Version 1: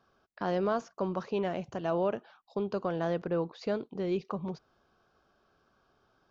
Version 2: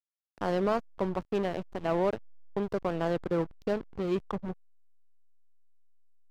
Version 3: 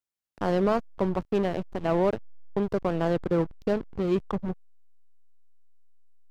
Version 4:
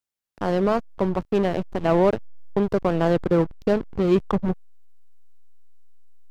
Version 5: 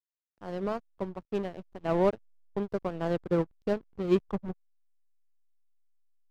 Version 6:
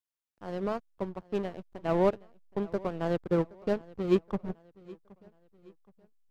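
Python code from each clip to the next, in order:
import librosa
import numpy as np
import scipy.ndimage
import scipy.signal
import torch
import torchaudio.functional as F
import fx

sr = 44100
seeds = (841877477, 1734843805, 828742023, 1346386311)

y1 = fx.backlash(x, sr, play_db=-30.5)
y1 = y1 * librosa.db_to_amplitude(3.0)
y2 = fx.low_shelf(y1, sr, hz=360.0, db=4.5)
y2 = y2 * librosa.db_to_amplitude(2.0)
y3 = fx.rider(y2, sr, range_db=10, speed_s=2.0)
y3 = y3 * librosa.db_to_amplitude(4.5)
y4 = fx.upward_expand(y3, sr, threshold_db=-29.0, expansion=2.5)
y4 = y4 * librosa.db_to_amplitude(-3.5)
y5 = fx.echo_feedback(y4, sr, ms=771, feedback_pct=41, wet_db=-22)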